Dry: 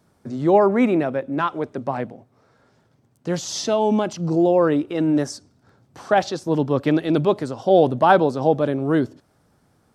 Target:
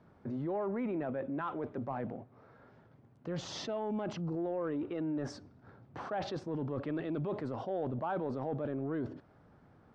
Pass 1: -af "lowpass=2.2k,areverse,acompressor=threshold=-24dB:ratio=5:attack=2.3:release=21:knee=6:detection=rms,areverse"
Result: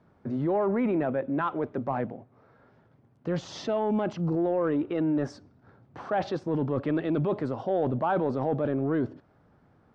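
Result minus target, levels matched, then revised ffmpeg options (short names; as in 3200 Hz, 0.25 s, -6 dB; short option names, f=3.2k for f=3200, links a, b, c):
compressor: peak gain reduction -9 dB
-af "lowpass=2.2k,areverse,acompressor=threshold=-35.5dB:ratio=5:attack=2.3:release=21:knee=6:detection=rms,areverse"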